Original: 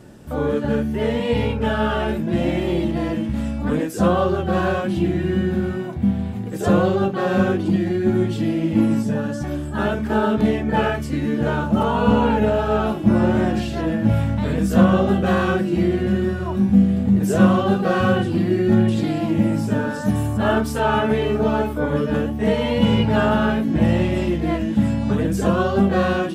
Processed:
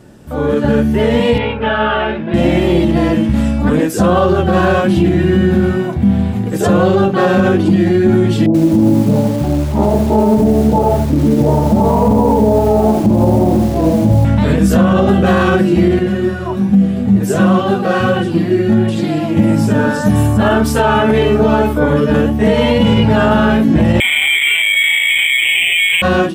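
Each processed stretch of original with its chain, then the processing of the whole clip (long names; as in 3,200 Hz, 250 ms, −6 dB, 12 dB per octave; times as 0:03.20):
0:01.38–0:02.34: low-pass filter 3,400 Hz 24 dB per octave + low-shelf EQ 390 Hz −11.5 dB
0:08.46–0:14.25: Butterworth low-pass 1,000 Hz 48 dB per octave + feedback echo at a low word length 83 ms, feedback 35%, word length 6 bits, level −6 dB
0:15.99–0:19.37: low-shelf EQ 76 Hz −8.5 dB + flanger 1.3 Hz, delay 5.1 ms, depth 4.6 ms, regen +48%
0:24.00–0:26.02: parametric band 310 Hz +12.5 dB 2.7 octaves + voice inversion scrambler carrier 3,500 Hz + linearly interpolated sample-rate reduction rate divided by 8×
whole clip: brickwall limiter −13 dBFS; automatic gain control gain up to 8 dB; level +2.5 dB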